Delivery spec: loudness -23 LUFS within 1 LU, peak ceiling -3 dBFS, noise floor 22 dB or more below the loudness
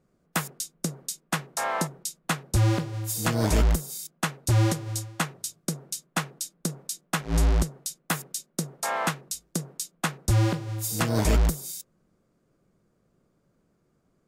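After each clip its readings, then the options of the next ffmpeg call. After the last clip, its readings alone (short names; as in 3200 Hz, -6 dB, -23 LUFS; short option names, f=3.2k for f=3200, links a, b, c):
loudness -28.0 LUFS; peak -13.0 dBFS; loudness target -23.0 LUFS
-> -af "volume=5dB"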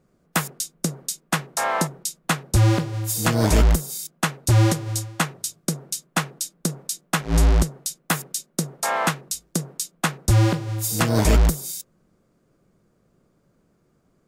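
loudness -23.0 LUFS; peak -8.0 dBFS; noise floor -65 dBFS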